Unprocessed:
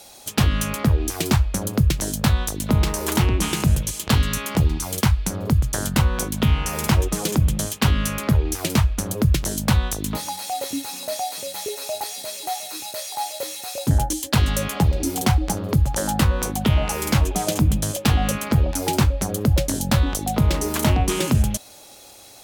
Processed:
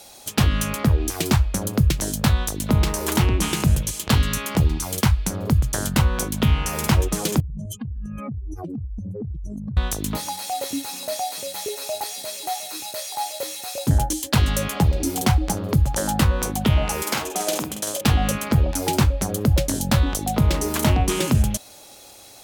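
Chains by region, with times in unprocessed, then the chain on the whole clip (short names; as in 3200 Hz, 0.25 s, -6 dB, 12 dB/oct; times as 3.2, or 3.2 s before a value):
7.4–9.77 spectral contrast raised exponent 3.3 + compressor 10:1, threshold -27 dBFS
17.02–18.01 HPF 390 Hz + doubler 48 ms -5.5 dB
whole clip: dry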